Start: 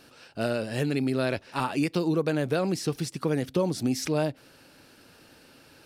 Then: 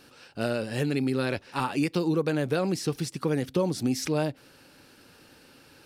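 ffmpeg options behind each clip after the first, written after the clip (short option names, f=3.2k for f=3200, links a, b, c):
-af "bandreject=f=650:w=12"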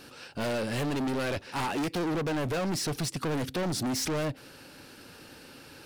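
-af "volume=33dB,asoftclip=hard,volume=-33dB,volume=5dB"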